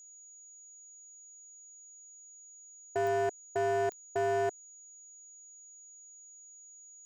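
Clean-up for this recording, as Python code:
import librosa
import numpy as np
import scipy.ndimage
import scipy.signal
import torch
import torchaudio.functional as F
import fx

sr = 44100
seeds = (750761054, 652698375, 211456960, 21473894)

y = fx.fix_declip(x, sr, threshold_db=-26.5)
y = fx.fix_declick_ar(y, sr, threshold=10.0)
y = fx.notch(y, sr, hz=6800.0, q=30.0)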